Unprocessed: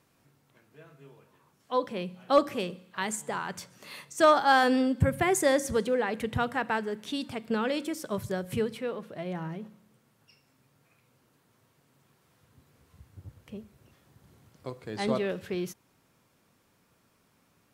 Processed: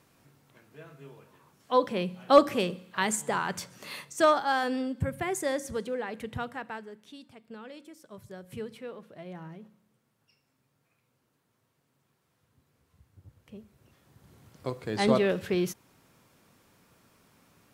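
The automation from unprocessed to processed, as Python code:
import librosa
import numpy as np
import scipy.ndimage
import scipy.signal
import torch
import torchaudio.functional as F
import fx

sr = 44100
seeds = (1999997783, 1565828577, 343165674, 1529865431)

y = fx.gain(x, sr, db=fx.line((3.92, 4.0), (4.53, -6.0), (6.39, -6.0), (7.26, -16.0), (8.06, -16.0), (8.73, -7.5), (13.22, -7.5), (14.69, 5.0)))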